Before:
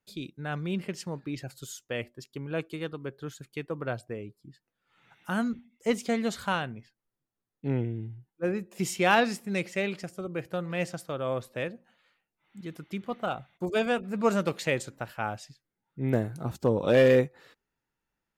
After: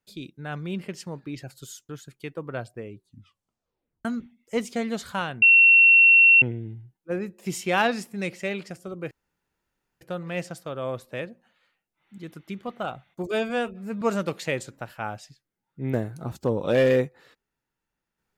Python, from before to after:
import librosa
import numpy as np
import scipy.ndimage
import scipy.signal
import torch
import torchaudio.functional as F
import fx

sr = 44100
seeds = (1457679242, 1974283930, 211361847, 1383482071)

y = fx.edit(x, sr, fx.cut(start_s=1.89, length_s=1.33),
    fx.tape_stop(start_s=4.26, length_s=1.12),
    fx.bleep(start_s=6.75, length_s=1.0, hz=2720.0, db=-11.0),
    fx.insert_room_tone(at_s=10.44, length_s=0.9),
    fx.stretch_span(start_s=13.74, length_s=0.47, factor=1.5), tone=tone)